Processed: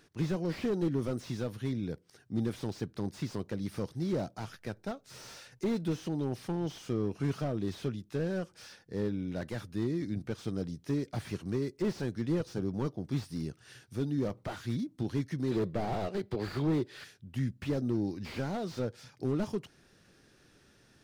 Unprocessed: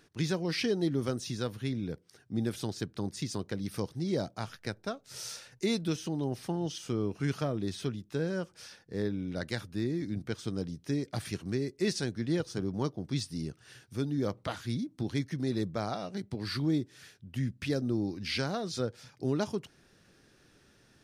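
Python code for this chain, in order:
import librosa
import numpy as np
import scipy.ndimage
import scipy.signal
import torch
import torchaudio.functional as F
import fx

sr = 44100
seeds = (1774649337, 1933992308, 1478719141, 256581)

y = fx.spec_box(x, sr, start_s=15.52, length_s=1.52, low_hz=340.0, high_hz=5100.0, gain_db=9)
y = fx.slew_limit(y, sr, full_power_hz=17.0)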